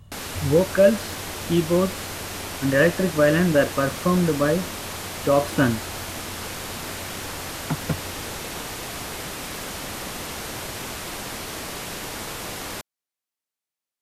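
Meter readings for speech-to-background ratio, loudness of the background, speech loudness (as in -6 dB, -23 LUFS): 9.5 dB, -31.5 LUFS, -22.0 LUFS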